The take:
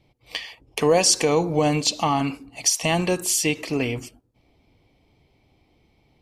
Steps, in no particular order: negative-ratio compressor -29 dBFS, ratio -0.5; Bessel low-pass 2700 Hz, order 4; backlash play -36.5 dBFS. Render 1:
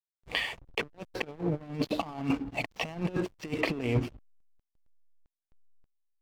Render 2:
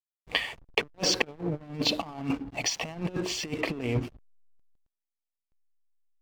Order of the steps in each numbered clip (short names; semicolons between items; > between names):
negative-ratio compressor > Bessel low-pass > backlash; Bessel low-pass > negative-ratio compressor > backlash